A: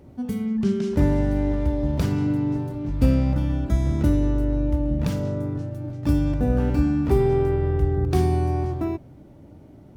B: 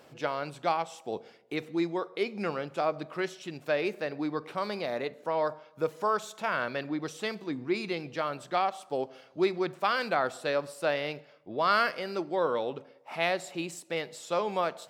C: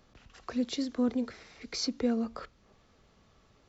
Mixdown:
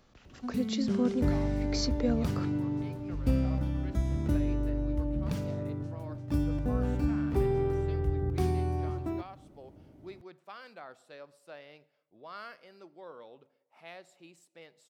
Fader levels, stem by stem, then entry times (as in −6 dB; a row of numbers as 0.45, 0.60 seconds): −8.5, −19.5, −0.5 decibels; 0.25, 0.65, 0.00 seconds